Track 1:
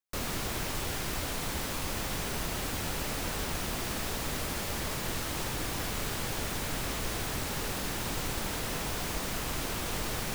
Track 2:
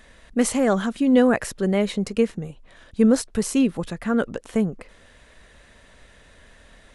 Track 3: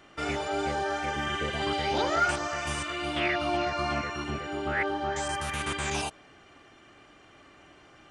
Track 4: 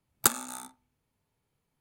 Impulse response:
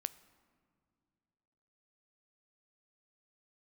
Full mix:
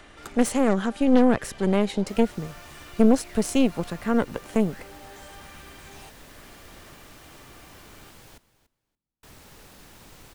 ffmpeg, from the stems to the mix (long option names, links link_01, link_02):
-filter_complex "[0:a]adelay=1950,volume=-18dB,asplit=3[link_01][link_02][link_03];[link_01]atrim=end=8.38,asetpts=PTS-STARTPTS,afade=type=out:start_time=8.376:duration=0.004:curve=hsin[link_04];[link_02]atrim=start=8.38:end=9.23,asetpts=PTS-STARTPTS,volume=0[link_05];[link_03]atrim=start=9.23,asetpts=PTS-STARTPTS,afade=type=in:duration=0.004:curve=hsin[link_06];[link_04][link_05][link_06]concat=n=3:v=0:a=1,asplit=3[link_07][link_08][link_09];[link_08]volume=-7.5dB[link_10];[link_09]volume=-14dB[link_11];[1:a]aeval=exprs='0.531*(cos(1*acos(clip(val(0)/0.531,-1,1)))-cos(1*PI/2))+0.133*(cos(4*acos(clip(val(0)/0.531,-1,1)))-cos(4*PI/2))':channel_layout=same,volume=-2.5dB[link_12];[2:a]acompressor=mode=upward:threshold=-32dB:ratio=2.5,alimiter=limit=-23dB:level=0:latency=1:release=96,asoftclip=type=tanh:threshold=-35.5dB,volume=-8dB[link_13];[3:a]aemphasis=mode=reproduction:type=75kf,volume=-13.5dB[link_14];[4:a]atrim=start_sample=2205[link_15];[link_10][link_15]afir=irnorm=-1:irlink=0[link_16];[link_11]aecho=0:1:287|574|861:1|0.15|0.0225[link_17];[link_07][link_12][link_13][link_14][link_16][link_17]amix=inputs=6:normalize=0,acrossover=split=440[link_18][link_19];[link_19]acompressor=threshold=-24dB:ratio=3[link_20];[link_18][link_20]amix=inputs=2:normalize=0"